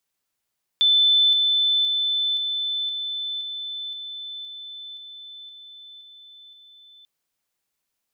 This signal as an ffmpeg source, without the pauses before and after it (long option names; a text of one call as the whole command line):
ffmpeg -f lavfi -i "aevalsrc='pow(10,(-14-3*floor(t/0.52))/20)*sin(2*PI*3520*t)':duration=6.24:sample_rate=44100" out.wav